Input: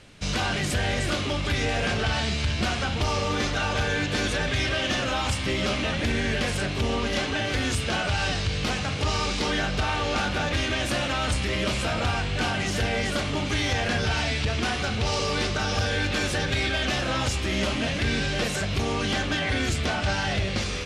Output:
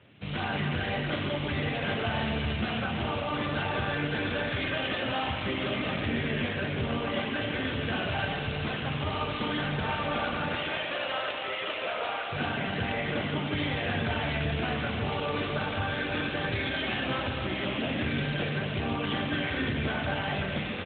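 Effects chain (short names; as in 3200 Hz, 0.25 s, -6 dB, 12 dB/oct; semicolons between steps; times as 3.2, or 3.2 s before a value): 10.55–12.32 HPF 380 Hz 24 dB/oct; frequency-shifting echo 0.15 s, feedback 61%, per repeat -97 Hz, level -22 dB; reverb RT60 3.1 s, pre-delay 24 ms, DRR 0.5 dB; gain -4.5 dB; AMR-NB 12.2 kbps 8000 Hz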